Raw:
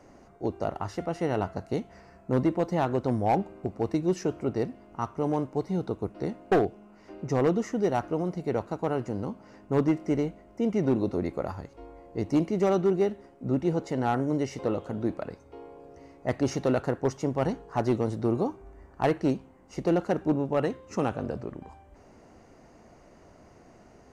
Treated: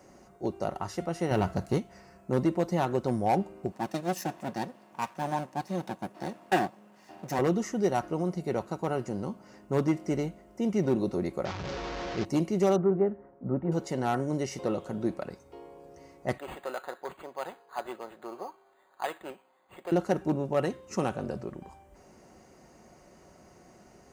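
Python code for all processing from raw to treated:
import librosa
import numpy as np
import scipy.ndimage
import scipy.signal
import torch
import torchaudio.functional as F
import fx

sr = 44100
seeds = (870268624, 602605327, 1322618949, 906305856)

y = fx.chain(x, sr, fx.low_shelf(hz=160.0, db=8.5),
    fx.leveller(passes=1), at=(1.31, 1.78))
y = fx.chain(y, sr, fx.lower_of_two(delay_ms=1.1),
    fx.highpass(hz=200.0, slope=12), at=(3.72, 7.39))
y = fx.chain(y, sr, fx.delta_mod(bps=32000, step_db=-27.5),
    fx.high_shelf(hz=4800.0, db=-11.0), at=(11.45, 12.25))
y = fx.chain(y, sr, fx.lowpass(hz=1600.0, slope=24),
    fx.notch(hz=360.0, q=12.0), at=(12.76, 13.72))
y = fx.chain(y, sr, fx.highpass(hz=830.0, slope=12),
    fx.resample_linear(factor=8), at=(16.38, 19.92))
y = scipy.signal.sosfilt(scipy.signal.butter(2, 41.0, 'highpass', fs=sr, output='sos'), y)
y = fx.high_shelf(y, sr, hz=6300.0, db=12.0)
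y = y + 0.33 * np.pad(y, (int(5.4 * sr / 1000.0), 0))[:len(y)]
y = y * librosa.db_to_amplitude(-2.0)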